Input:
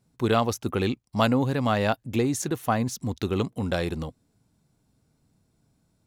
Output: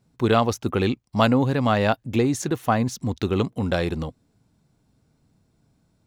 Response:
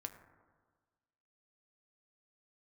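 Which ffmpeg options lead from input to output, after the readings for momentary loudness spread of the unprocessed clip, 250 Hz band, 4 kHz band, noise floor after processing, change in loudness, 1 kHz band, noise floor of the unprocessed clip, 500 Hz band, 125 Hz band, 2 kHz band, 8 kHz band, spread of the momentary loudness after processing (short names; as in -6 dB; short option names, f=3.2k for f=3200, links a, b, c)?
6 LU, +3.5 dB, +2.5 dB, -67 dBFS, +3.5 dB, +3.5 dB, -71 dBFS, +3.5 dB, +3.5 dB, +3.0 dB, 0.0 dB, 7 LU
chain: -af "equalizer=f=12k:t=o:w=1.3:g=-7,volume=3.5dB"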